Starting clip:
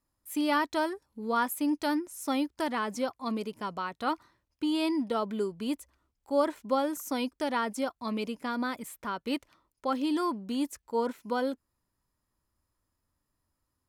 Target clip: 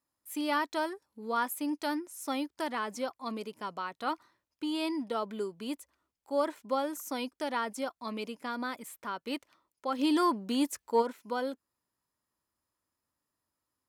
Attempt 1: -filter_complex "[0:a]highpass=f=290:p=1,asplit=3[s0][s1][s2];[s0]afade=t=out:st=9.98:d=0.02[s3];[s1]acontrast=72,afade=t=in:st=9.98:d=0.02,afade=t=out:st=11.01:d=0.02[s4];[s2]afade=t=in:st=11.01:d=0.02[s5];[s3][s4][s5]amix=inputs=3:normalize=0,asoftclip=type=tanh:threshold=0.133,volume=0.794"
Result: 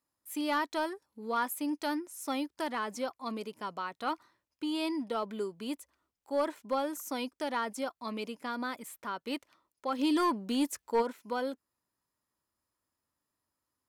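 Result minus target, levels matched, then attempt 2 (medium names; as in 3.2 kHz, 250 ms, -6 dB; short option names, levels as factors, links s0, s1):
saturation: distortion +17 dB
-filter_complex "[0:a]highpass=f=290:p=1,asplit=3[s0][s1][s2];[s0]afade=t=out:st=9.98:d=0.02[s3];[s1]acontrast=72,afade=t=in:st=9.98:d=0.02,afade=t=out:st=11.01:d=0.02[s4];[s2]afade=t=in:st=11.01:d=0.02[s5];[s3][s4][s5]amix=inputs=3:normalize=0,asoftclip=type=tanh:threshold=0.422,volume=0.794"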